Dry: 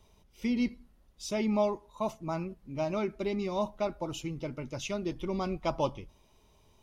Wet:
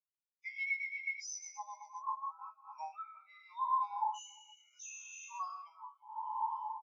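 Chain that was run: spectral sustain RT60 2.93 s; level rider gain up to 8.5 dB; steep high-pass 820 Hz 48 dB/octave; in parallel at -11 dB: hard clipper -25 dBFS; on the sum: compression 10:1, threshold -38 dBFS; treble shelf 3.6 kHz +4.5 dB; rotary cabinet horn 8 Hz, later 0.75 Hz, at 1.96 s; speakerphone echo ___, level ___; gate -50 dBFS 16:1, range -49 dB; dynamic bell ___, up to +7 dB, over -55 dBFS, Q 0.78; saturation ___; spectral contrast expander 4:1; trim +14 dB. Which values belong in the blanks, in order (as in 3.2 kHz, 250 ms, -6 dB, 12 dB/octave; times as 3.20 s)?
350 ms, -9 dB, 7.2 kHz, -37.5 dBFS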